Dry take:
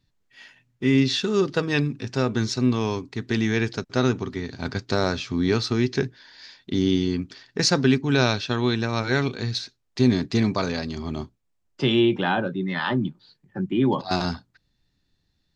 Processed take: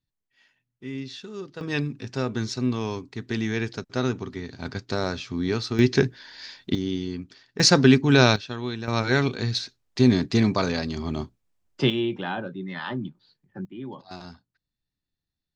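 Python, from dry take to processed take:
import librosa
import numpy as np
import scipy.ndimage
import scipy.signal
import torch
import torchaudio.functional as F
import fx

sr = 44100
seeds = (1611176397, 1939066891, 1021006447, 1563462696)

y = fx.gain(x, sr, db=fx.steps((0.0, -15.0), (1.61, -4.0), (5.79, 4.0), (6.75, -7.0), (7.6, 3.5), (8.36, -8.0), (8.88, 1.0), (11.9, -7.0), (13.65, -16.0)))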